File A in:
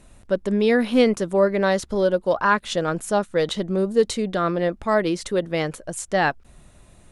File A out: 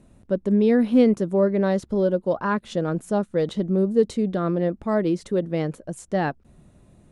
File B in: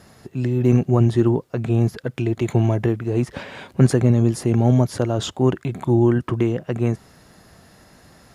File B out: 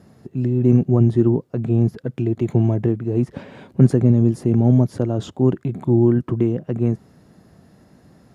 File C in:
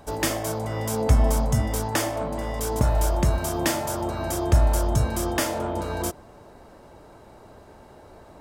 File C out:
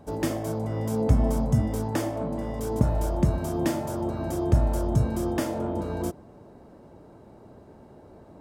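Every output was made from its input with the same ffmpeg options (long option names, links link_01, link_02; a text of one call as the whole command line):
ffmpeg -i in.wav -af "equalizer=frequency=200:width=0.33:gain=14,volume=-11dB" out.wav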